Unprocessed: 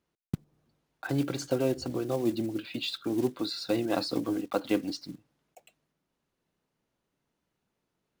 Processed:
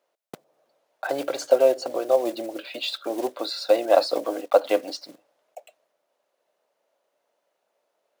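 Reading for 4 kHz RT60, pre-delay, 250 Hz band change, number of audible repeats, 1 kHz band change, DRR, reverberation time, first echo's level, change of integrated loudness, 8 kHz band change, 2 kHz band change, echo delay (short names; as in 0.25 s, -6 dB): none, none, -4.0 dB, none, +11.5 dB, none, none, none, +7.5 dB, +4.5 dB, +5.5 dB, none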